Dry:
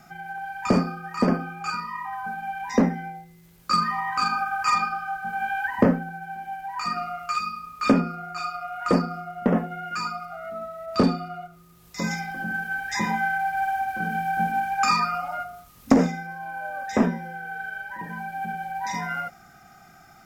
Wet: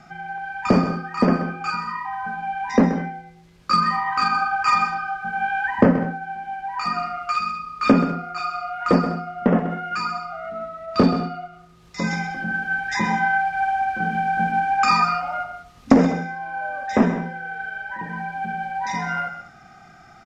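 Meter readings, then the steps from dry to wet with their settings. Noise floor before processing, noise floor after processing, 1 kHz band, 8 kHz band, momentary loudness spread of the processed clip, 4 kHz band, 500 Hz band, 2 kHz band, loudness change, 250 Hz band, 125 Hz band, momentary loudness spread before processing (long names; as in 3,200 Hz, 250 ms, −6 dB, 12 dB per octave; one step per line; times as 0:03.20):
−52 dBFS, −48 dBFS, +4.0 dB, −2.0 dB, 13 LU, +2.0 dB, +4.0 dB, +4.0 dB, +4.0 dB, +4.0 dB, +4.0 dB, 13 LU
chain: low-pass filter 5,200 Hz 12 dB per octave
on a send: multi-tap delay 129/199 ms −11/−17 dB
on the sum: level +3.5 dB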